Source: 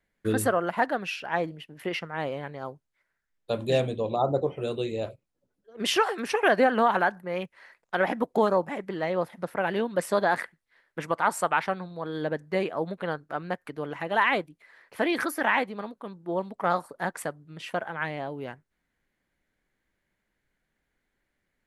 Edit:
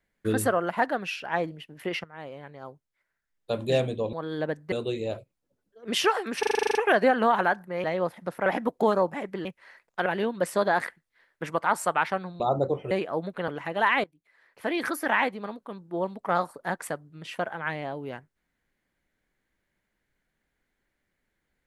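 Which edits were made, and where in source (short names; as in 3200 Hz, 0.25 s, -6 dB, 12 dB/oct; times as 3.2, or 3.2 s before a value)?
2.04–3.58 fade in, from -12.5 dB
4.13–4.64 swap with 11.96–12.55
6.31 stutter 0.04 s, 10 plays
7.4–8.01 swap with 9–9.62
13.12–13.83 cut
14.39–15.35 fade in, from -20 dB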